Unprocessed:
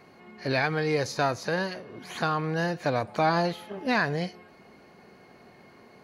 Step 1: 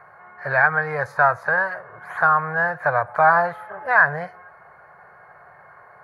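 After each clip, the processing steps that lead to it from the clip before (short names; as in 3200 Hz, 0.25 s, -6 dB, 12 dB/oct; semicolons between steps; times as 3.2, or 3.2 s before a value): EQ curve 150 Hz 0 dB, 250 Hz -23 dB, 590 Hz +6 dB, 1600 Hz +15 dB, 2800 Hz -14 dB, 5900 Hz -19 dB, 9200 Hz -7 dB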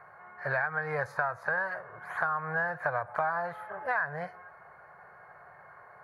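compressor 12:1, threshold -21 dBFS, peak gain reduction 11.5 dB; gain -5 dB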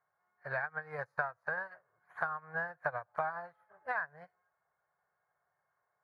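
upward expander 2.5:1, over -44 dBFS; gain -2 dB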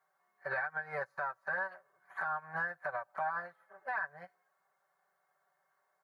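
HPF 360 Hz 6 dB/oct; comb 5.2 ms, depth 91%; limiter -29.5 dBFS, peak gain reduction 11 dB; gain +3 dB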